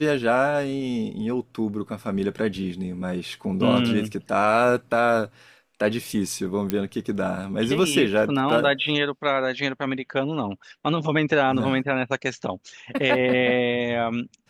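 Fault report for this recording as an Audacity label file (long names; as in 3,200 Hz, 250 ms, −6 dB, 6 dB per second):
6.700000	6.700000	click −10 dBFS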